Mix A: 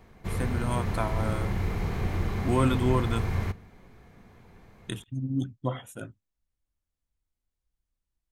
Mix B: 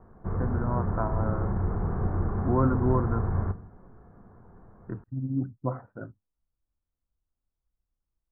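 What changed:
background: send +7.0 dB
master: add Butterworth low-pass 1,500 Hz 48 dB per octave

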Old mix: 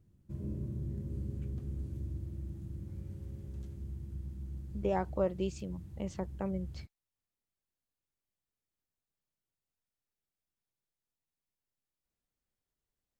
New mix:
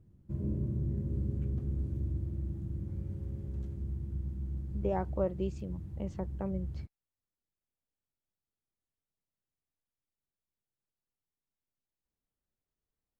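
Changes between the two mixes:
background +5.0 dB
master: add high-shelf EQ 2,100 Hz −11 dB

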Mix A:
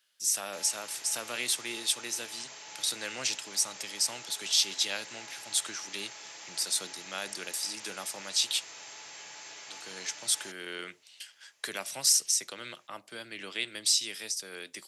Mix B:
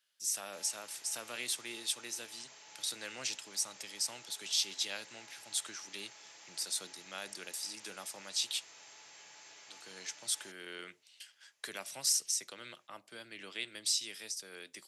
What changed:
speech −6.5 dB
background −9.0 dB

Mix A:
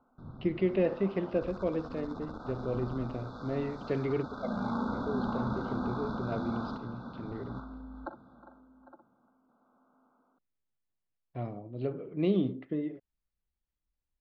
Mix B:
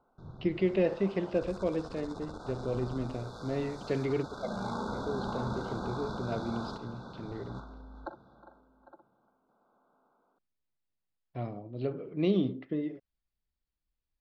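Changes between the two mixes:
background: add thirty-one-band graphic EQ 250 Hz −11 dB, 400 Hz +4 dB, 1,250 Hz −5 dB
master: remove high-frequency loss of the air 170 metres

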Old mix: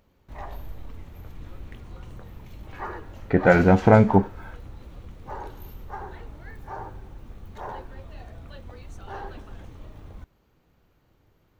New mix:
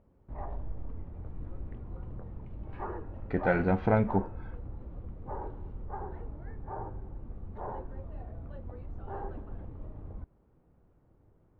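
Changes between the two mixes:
speech −10.5 dB
background: add Bessel low-pass filter 740 Hz, order 2

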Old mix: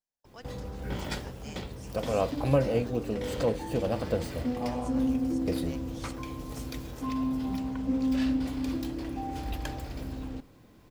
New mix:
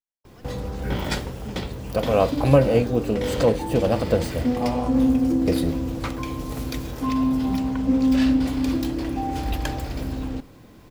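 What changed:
speech −7.5 dB
background +8.5 dB

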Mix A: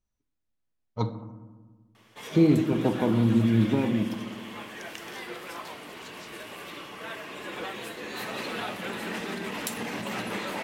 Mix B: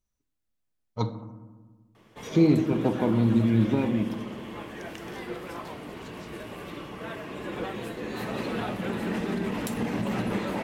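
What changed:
background: add spectral tilt −3.5 dB per octave
master: add high-shelf EQ 6,700 Hz +9 dB

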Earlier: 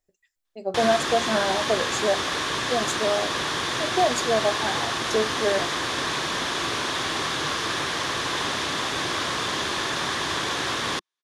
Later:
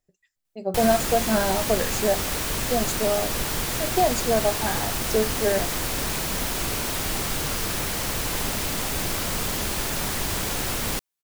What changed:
speech: add parametric band 150 Hz +12.5 dB 0.89 octaves
background: remove loudspeaker in its box 140–8,200 Hz, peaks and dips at 200 Hz −7 dB, 350 Hz +4 dB, 1,100 Hz +9 dB, 1,700 Hz +7 dB, 3,500 Hz +8 dB, 7,900 Hz −8 dB

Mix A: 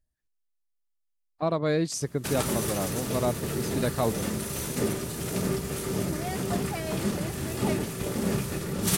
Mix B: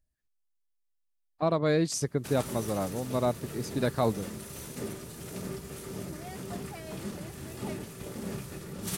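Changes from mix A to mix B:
background −8.0 dB
reverb: off

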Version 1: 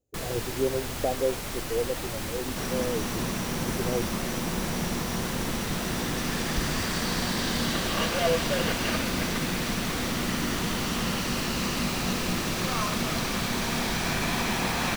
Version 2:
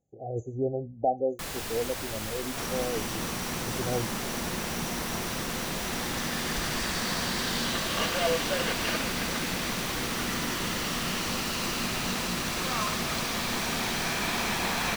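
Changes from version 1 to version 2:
speech: remove phaser with its sweep stopped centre 420 Hz, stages 4
first sound: entry +1.25 s
master: add low-shelf EQ 410 Hz −6 dB

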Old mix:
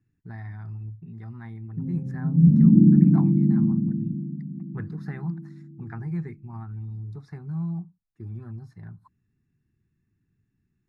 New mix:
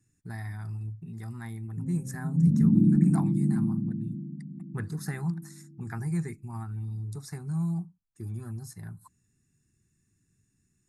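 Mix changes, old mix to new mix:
background −6.5 dB
master: remove high-frequency loss of the air 330 metres

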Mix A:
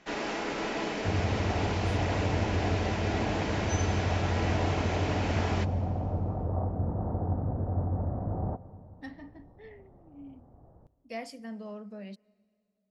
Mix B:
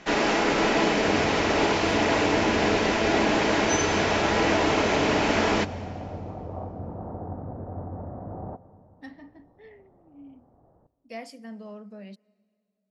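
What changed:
first sound +10.5 dB
second sound: add low-shelf EQ 130 Hz −11.5 dB

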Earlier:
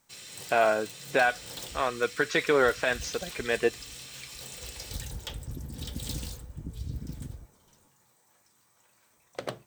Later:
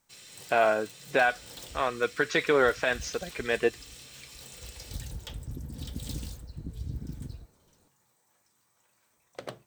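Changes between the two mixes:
first sound −4.5 dB
second sound: remove Butterworth low-pass 2,100 Hz 72 dB per octave

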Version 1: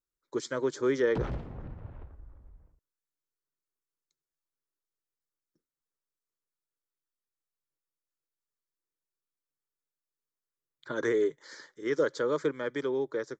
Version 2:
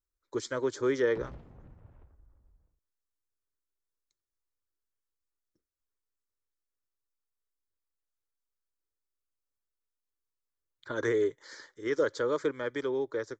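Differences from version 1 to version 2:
speech: add low shelf with overshoot 120 Hz +7.5 dB, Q 3
background −11.0 dB

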